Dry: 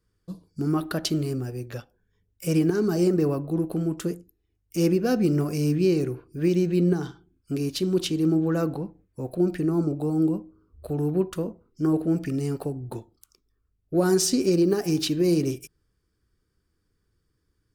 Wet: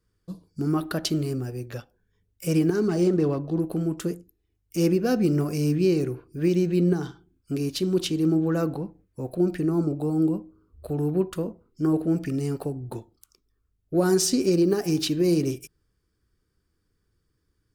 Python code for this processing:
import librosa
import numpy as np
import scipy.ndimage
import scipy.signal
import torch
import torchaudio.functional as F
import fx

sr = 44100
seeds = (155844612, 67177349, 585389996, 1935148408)

y = fx.resample_linear(x, sr, factor=3, at=(2.87, 3.6))
y = fx.notch(y, sr, hz=5900.0, q=13.0, at=(9.82, 11.91))